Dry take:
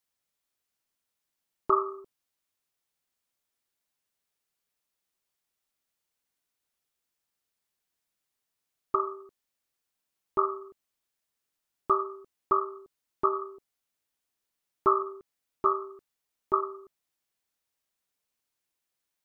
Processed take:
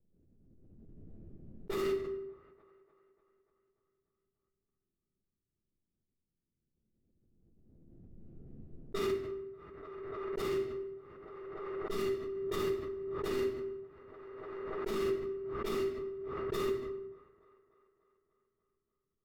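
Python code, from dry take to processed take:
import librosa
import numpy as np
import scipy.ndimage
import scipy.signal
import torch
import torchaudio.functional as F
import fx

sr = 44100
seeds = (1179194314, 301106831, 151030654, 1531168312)

y = scipy.ndimage.median_filter(x, 41, mode='constant')
y = fx.env_lowpass(y, sr, base_hz=350.0, full_db=-33.5)
y = fx.level_steps(y, sr, step_db=13)
y = fx.peak_eq(y, sr, hz=920.0, db=-14.0, octaves=1.6)
y = fx.echo_wet_bandpass(y, sr, ms=294, feedback_pct=59, hz=790.0, wet_db=-15.0)
y = fx.dynamic_eq(y, sr, hz=270.0, q=0.77, threshold_db=-58.0, ratio=4.0, max_db=4)
y = fx.room_shoebox(y, sr, seeds[0], volume_m3=220.0, walls='mixed', distance_m=4.5)
y = fx.pre_swell(y, sr, db_per_s=22.0)
y = y * librosa.db_to_amplitude(-1.5)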